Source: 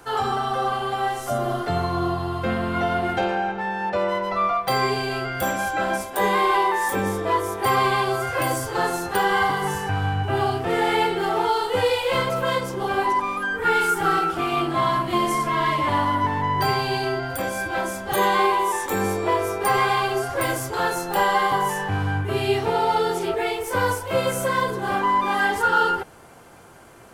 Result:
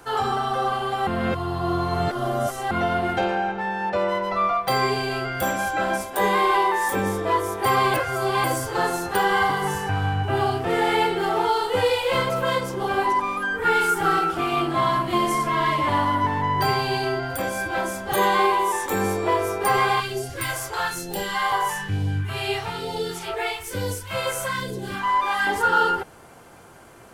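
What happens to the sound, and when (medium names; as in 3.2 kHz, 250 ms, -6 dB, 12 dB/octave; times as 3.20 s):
1.07–2.71 s: reverse
7.94–8.44 s: reverse
20.00–25.47 s: phase shifter stages 2, 1.1 Hz, lowest notch 200–1200 Hz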